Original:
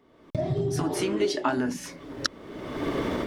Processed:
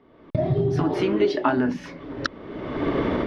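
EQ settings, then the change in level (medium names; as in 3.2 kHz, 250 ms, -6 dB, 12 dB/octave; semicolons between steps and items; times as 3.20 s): distance through air 310 m; treble shelf 4.9 kHz +4.5 dB; +5.5 dB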